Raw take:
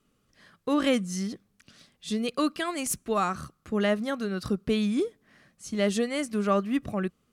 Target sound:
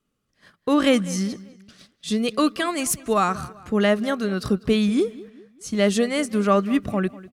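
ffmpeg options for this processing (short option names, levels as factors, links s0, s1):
-filter_complex "[0:a]agate=range=0.251:threshold=0.00178:ratio=16:detection=peak,asplit=2[s0][s1];[s1]adelay=197,lowpass=f=4300:p=1,volume=0.112,asplit=2[s2][s3];[s3]adelay=197,lowpass=f=4300:p=1,volume=0.42,asplit=2[s4][s5];[s5]adelay=197,lowpass=f=4300:p=1,volume=0.42[s6];[s0][s2][s4][s6]amix=inputs=4:normalize=0,volume=2"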